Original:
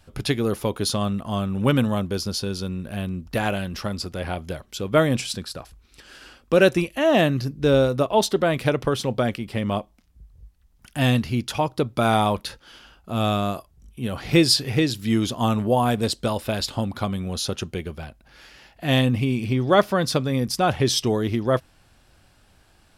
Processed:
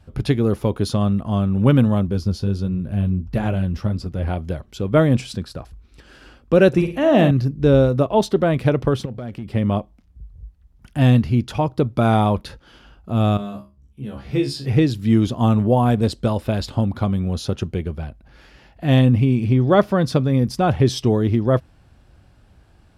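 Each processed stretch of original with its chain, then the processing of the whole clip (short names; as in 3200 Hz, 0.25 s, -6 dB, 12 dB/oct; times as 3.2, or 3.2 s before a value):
2.07–4.28 flange 1.5 Hz, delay 4.2 ms, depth 8.5 ms, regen -47% + low shelf 190 Hz +7.5 dB
6.68–7.31 HPF 44 Hz + flutter echo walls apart 9.3 m, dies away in 0.41 s
9.05–9.54 bell 940 Hz -5 dB 0.43 oct + compressor 8:1, threshold -30 dBFS + overloaded stage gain 29.5 dB
13.37–14.66 notches 50/100/150/200/250/300/350 Hz + resonator 69 Hz, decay 0.25 s, mix 100%
whole clip: HPF 46 Hz; tilt -2.5 dB/oct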